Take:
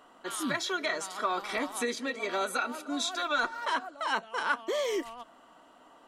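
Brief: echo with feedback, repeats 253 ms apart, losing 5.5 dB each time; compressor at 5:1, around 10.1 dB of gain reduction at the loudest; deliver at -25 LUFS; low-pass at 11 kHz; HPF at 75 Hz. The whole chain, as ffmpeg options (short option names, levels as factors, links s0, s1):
-af "highpass=75,lowpass=11000,acompressor=threshold=0.0158:ratio=5,aecho=1:1:253|506|759|1012|1265|1518|1771:0.531|0.281|0.149|0.079|0.0419|0.0222|0.0118,volume=4.47"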